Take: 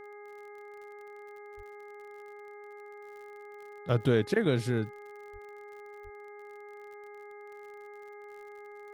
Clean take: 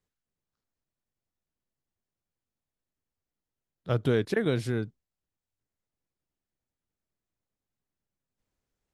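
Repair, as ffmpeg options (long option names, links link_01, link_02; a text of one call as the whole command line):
ffmpeg -i in.wav -filter_complex "[0:a]adeclick=threshold=4,bandreject=frequency=412.7:width_type=h:width=4,bandreject=frequency=825.4:width_type=h:width=4,bandreject=frequency=1238.1:width_type=h:width=4,bandreject=frequency=1650.8:width_type=h:width=4,bandreject=frequency=2100:width=30,asplit=3[link_01][link_02][link_03];[link_01]afade=type=out:start_time=1.56:duration=0.02[link_04];[link_02]highpass=frequency=140:width=0.5412,highpass=frequency=140:width=1.3066,afade=type=in:start_time=1.56:duration=0.02,afade=type=out:start_time=1.68:duration=0.02[link_05];[link_03]afade=type=in:start_time=1.68:duration=0.02[link_06];[link_04][link_05][link_06]amix=inputs=3:normalize=0,asplit=3[link_07][link_08][link_09];[link_07]afade=type=out:start_time=5.32:duration=0.02[link_10];[link_08]highpass=frequency=140:width=0.5412,highpass=frequency=140:width=1.3066,afade=type=in:start_time=5.32:duration=0.02,afade=type=out:start_time=5.44:duration=0.02[link_11];[link_09]afade=type=in:start_time=5.44:duration=0.02[link_12];[link_10][link_11][link_12]amix=inputs=3:normalize=0,asplit=3[link_13][link_14][link_15];[link_13]afade=type=out:start_time=6.03:duration=0.02[link_16];[link_14]highpass=frequency=140:width=0.5412,highpass=frequency=140:width=1.3066,afade=type=in:start_time=6.03:duration=0.02,afade=type=out:start_time=6.15:duration=0.02[link_17];[link_15]afade=type=in:start_time=6.15:duration=0.02[link_18];[link_16][link_17][link_18]amix=inputs=3:normalize=0" out.wav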